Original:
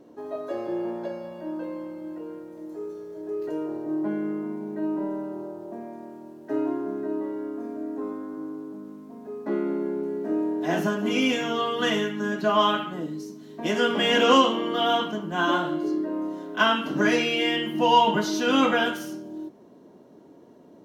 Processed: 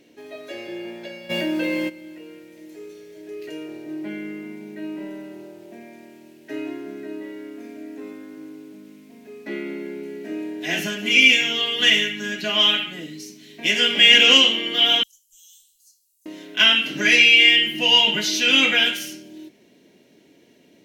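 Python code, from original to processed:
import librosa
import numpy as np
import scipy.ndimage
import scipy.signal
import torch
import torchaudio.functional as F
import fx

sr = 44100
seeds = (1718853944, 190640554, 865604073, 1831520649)

y = fx.env_flatten(x, sr, amount_pct=70, at=(1.29, 1.88), fade=0.02)
y = fx.cheby2_bandstop(y, sr, low_hz=120.0, high_hz=1900.0, order=4, stop_db=70, at=(15.03, 16.26))
y = fx.high_shelf_res(y, sr, hz=1600.0, db=12.5, q=3.0)
y = y * 10.0 ** (-3.5 / 20.0)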